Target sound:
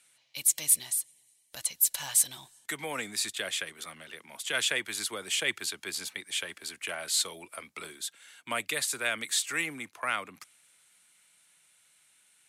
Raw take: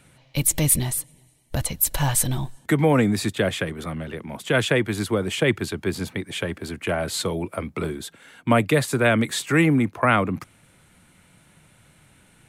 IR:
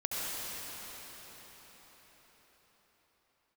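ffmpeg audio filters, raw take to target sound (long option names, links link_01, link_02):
-filter_complex "[0:a]dynaudnorm=framelen=300:gausssize=17:maxgain=11.5dB,bandpass=frequency=7600:width_type=q:width=0.6:csg=0,asplit=2[link_01][link_02];[link_02]asoftclip=type=tanh:threshold=-18dB,volume=-8.5dB[link_03];[link_01][link_03]amix=inputs=2:normalize=0,volume=-4.5dB"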